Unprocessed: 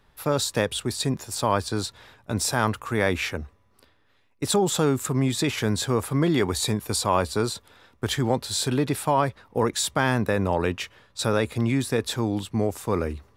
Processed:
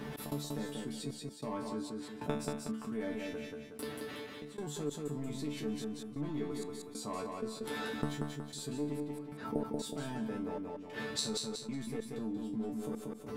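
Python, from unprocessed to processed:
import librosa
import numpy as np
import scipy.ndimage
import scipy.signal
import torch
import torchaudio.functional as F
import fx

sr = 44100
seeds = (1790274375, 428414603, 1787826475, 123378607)

p1 = scipy.signal.sosfilt(scipy.signal.butter(2, 50.0, 'highpass', fs=sr, output='sos'), x)
p2 = fx.peak_eq(p1, sr, hz=260.0, db=14.0, octaves=1.7)
p3 = fx.level_steps(p2, sr, step_db=21)
p4 = p2 + (p3 * 10.0 ** (-2.5 / 20.0))
p5 = np.clip(p4, -10.0 ** (-5.0 / 20.0), 10.0 ** (-5.0 / 20.0))
p6 = fx.gate_flip(p5, sr, shuts_db=-21.0, range_db=-33)
p7 = fx.resonator_bank(p6, sr, root=50, chord='fifth', decay_s=0.28)
p8 = fx.step_gate(p7, sr, bpm=95, pattern='x.xxxxx..xxx..x', floor_db=-24.0, edge_ms=4.5)
p9 = p8 + fx.echo_feedback(p8, sr, ms=184, feedback_pct=25, wet_db=-6, dry=0)
p10 = fx.env_flatten(p9, sr, amount_pct=50)
y = p10 * 10.0 ** (14.5 / 20.0)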